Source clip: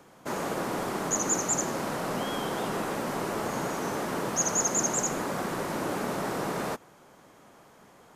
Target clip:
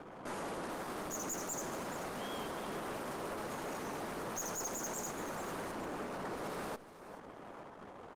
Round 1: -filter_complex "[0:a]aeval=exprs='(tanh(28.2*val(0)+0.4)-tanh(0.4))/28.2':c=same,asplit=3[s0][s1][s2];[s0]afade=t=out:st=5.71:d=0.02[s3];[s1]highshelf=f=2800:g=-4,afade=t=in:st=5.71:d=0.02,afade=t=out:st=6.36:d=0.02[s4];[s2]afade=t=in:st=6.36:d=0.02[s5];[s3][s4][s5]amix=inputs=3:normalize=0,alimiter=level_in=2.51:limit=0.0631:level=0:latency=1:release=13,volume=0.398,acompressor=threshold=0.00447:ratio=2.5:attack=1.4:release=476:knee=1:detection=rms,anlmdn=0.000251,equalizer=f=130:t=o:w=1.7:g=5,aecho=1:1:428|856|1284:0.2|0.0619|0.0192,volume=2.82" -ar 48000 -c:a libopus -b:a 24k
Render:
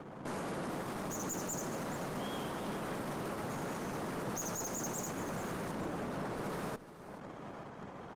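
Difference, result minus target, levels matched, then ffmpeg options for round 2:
125 Hz band +6.5 dB
-filter_complex "[0:a]aeval=exprs='(tanh(28.2*val(0)+0.4)-tanh(0.4))/28.2':c=same,asplit=3[s0][s1][s2];[s0]afade=t=out:st=5.71:d=0.02[s3];[s1]highshelf=f=2800:g=-4,afade=t=in:st=5.71:d=0.02,afade=t=out:st=6.36:d=0.02[s4];[s2]afade=t=in:st=6.36:d=0.02[s5];[s3][s4][s5]amix=inputs=3:normalize=0,alimiter=level_in=2.51:limit=0.0631:level=0:latency=1:release=13,volume=0.398,acompressor=threshold=0.00447:ratio=2.5:attack=1.4:release=476:knee=1:detection=rms,anlmdn=0.000251,equalizer=f=130:t=o:w=1.7:g=-4,aecho=1:1:428|856|1284:0.2|0.0619|0.0192,volume=2.82" -ar 48000 -c:a libopus -b:a 24k

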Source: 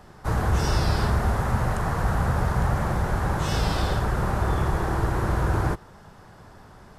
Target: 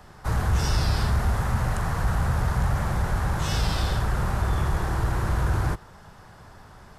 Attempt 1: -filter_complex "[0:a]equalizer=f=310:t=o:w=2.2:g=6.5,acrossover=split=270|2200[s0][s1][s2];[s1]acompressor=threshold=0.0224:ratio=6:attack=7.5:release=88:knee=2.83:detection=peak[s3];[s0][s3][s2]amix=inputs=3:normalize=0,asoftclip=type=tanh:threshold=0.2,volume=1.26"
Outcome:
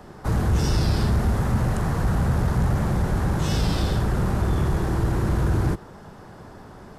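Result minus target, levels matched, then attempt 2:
250 Hz band +5.0 dB
-filter_complex "[0:a]equalizer=f=310:t=o:w=2.2:g=-5,acrossover=split=270|2200[s0][s1][s2];[s1]acompressor=threshold=0.0224:ratio=6:attack=7.5:release=88:knee=2.83:detection=peak[s3];[s0][s3][s2]amix=inputs=3:normalize=0,asoftclip=type=tanh:threshold=0.2,volume=1.26"

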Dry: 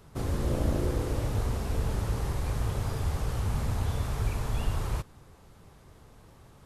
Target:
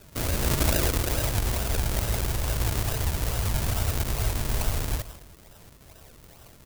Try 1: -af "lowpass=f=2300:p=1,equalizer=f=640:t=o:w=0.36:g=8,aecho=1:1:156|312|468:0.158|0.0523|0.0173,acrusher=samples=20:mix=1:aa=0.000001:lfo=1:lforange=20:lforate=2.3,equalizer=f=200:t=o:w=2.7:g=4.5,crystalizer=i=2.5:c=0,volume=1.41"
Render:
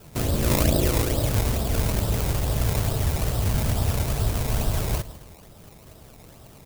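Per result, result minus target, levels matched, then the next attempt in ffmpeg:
250 Hz band +3.0 dB; decimation with a swept rate: distortion -4 dB
-af "lowpass=f=2300:p=1,equalizer=f=640:t=o:w=0.36:g=8,aecho=1:1:156|312|468:0.158|0.0523|0.0173,acrusher=samples=20:mix=1:aa=0.000001:lfo=1:lforange=20:lforate=2.3,equalizer=f=200:t=o:w=2.7:g=-2.5,crystalizer=i=2.5:c=0,volume=1.41"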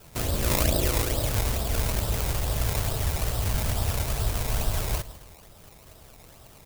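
decimation with a swept rate: distortion -4 dB
-af "lowpass=f=2300:p=1,equalizer=f=640:t=o:w=0.36:g=8,aecho=1:1:156|312|468:0.158|0.0523|0.0173,acrusher=samples=39:mix=1:aa=0.000001:lfo=1:lforange=39:lforate=2.3,equalizer=f=200:t=o:w=2.7:g=-2.5,crystalizer=i=2.5:c=0,volume=1.41"

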